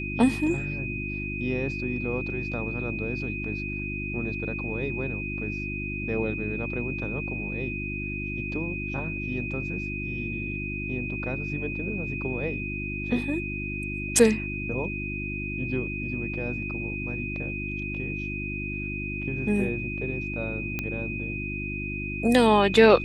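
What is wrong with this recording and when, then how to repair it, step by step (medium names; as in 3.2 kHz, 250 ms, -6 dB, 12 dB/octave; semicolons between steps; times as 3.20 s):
hum 50 Hz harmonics 7 -34 dBFS
whine 2.5 kHz -33 dBFS
20.79 s: pop -15 dBFS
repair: de-click; de-hum 50 Hz, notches 7; band-stop 2.5 kHz, Q 30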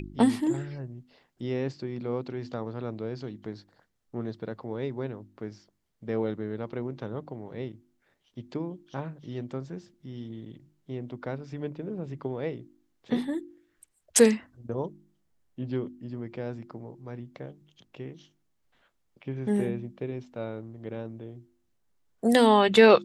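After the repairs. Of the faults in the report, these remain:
nothing left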